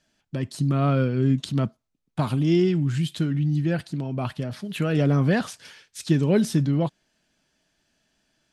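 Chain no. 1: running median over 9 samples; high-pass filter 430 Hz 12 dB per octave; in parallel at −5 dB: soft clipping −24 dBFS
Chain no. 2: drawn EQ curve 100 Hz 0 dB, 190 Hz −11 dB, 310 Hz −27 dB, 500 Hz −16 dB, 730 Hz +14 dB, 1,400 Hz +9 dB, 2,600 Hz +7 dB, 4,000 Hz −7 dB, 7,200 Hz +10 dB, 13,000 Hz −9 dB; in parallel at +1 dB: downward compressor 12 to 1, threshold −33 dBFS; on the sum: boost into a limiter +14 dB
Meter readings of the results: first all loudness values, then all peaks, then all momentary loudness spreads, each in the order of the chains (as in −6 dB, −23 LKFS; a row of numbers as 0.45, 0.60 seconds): −29.0, −12.5 LKFS; −13.0, −1.0 dBFS; 12, 7 LU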